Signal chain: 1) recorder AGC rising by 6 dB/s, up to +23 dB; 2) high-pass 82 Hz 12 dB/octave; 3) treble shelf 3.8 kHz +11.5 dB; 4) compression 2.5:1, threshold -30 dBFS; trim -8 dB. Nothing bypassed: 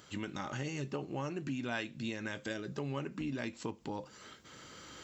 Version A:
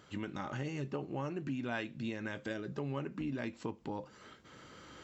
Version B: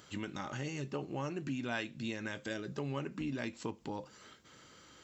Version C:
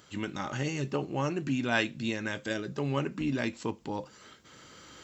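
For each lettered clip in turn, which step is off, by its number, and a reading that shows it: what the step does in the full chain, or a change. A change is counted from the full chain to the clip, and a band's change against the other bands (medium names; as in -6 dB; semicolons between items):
3, 4 kHz band -4.5 dB; 1, momentary loudness spread change +5 LU; 4, mean gain reduction 4.5 dB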